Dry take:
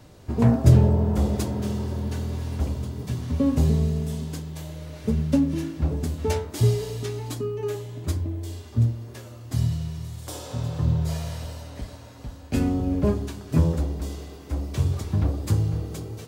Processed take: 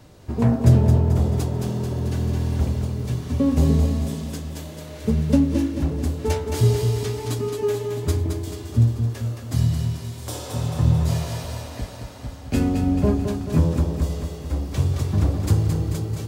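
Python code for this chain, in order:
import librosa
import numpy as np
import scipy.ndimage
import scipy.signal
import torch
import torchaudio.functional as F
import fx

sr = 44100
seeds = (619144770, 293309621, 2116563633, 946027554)

p1 = x + fx.echo_feedback(x, sr, ms=219, feedback_pct=56, wet_db=-6.0, dry=0)
y = fx.rider(p1, sr, range_db=5, speed_s=2.0)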